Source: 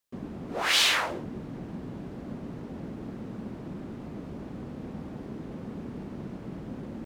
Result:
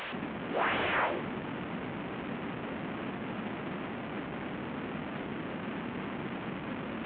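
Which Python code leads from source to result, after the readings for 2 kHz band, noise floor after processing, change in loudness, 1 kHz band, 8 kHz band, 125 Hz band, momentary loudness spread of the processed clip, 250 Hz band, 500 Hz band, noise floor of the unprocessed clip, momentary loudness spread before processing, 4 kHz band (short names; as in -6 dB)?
-3.0 dB, -39 dBFS, -4.0 dB, +2.0 dB, under -40 dB, -2.5 dB, 9 LU, 0.0 dB, +2.5 dB, -42 dBFS, 17 LU, -14.5 dB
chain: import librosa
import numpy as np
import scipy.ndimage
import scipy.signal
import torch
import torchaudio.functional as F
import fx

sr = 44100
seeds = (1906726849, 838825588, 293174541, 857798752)

y = fx.delta_mod(x, sr, bps=16000, step_db=-33.0)
y = fx.highpass(y, sr, hz=210.0, slope=6)
y = y * 10.0 ** (2.0 / 20.0)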